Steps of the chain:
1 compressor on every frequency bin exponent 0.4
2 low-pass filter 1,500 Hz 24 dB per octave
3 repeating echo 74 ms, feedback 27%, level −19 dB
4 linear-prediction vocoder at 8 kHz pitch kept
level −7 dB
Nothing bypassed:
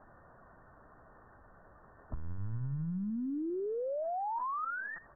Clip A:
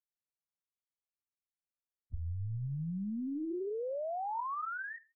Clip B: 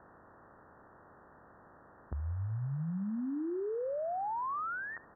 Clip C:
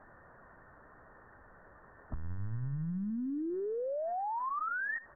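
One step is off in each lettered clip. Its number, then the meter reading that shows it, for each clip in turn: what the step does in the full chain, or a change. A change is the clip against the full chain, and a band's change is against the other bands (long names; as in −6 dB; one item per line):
1, 125 Hz band +2.0 dB
4, 125 Hz band +2.0 dB
2, 2 kHz band +4.5 dB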